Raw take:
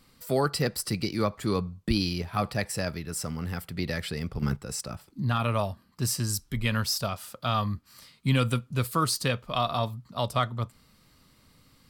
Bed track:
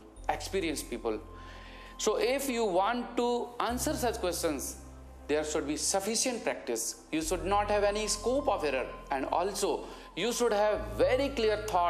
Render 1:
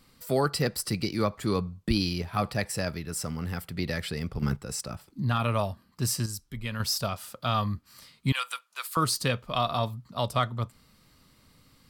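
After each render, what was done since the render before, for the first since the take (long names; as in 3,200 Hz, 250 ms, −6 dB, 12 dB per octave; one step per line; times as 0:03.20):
0:06.26–0:06.80: clip gain −7 dB
0:08.32–0:08.97: high-pass filter 880 Hz 24 dB per octave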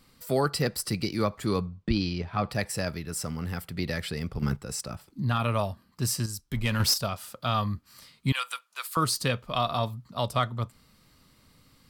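0:01.66–0:02.50: high-frequency loss of the air 120 metres
0:06.41–0:06.94: leveller curve on the samples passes 2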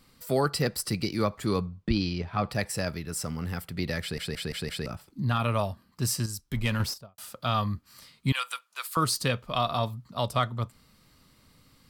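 0:04.01: stutter in place 0.17 s, 5 plays
0:06.66–0:07.18: fade out and dull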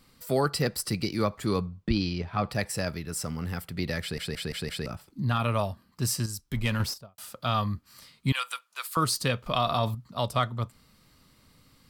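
0:09.46–0:09.95: envelope flattener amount 50%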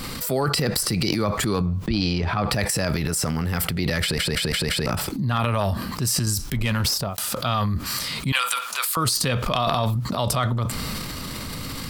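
transient designer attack −1 dB, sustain +12 dB
envelope flattener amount 70%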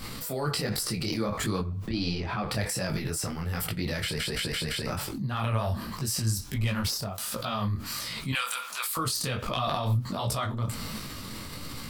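tuned comb filter 110 Hz, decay 0.16 s, harmonics all, mix 50%
micro pitch shift up and down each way 47 cents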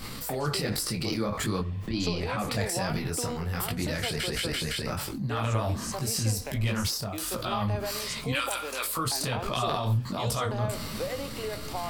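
mix in bed track −7.5 dB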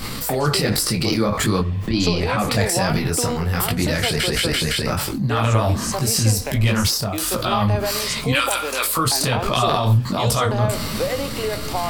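level +10 dB
brickwall limiter −3 dBFS, peak gain reduction 1 dB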